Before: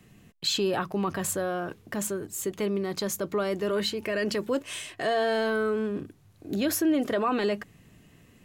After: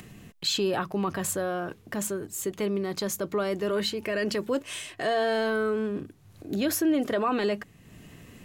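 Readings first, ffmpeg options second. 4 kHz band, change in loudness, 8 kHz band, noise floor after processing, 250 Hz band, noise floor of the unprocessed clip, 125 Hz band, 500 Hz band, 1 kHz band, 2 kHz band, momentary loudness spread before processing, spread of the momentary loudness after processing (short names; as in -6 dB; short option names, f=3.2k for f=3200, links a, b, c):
0.0 dB, 0.0 dB, 0.0 dB, -55 dBFS, 0.0 dB, -58 dBFS, 0.0 dB, 0.0 dB, 0.0 dB, 0.0 dB, 9 LU, 9 LU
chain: -af "acompressor=mode=upward:threshold=-39dB:ratio=2.5"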